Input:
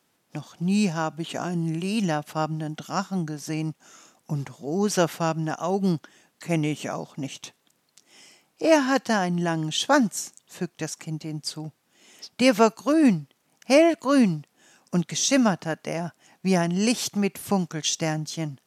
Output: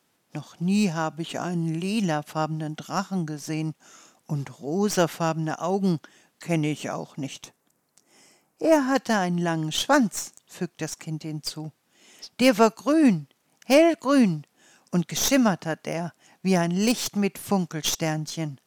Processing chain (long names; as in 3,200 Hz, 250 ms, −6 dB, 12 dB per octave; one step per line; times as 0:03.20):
stylus tracing distortion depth 0.037 ms
0:07.44–0:08.95: parametric band 3,400 Hz −11 dB 1.4 octaves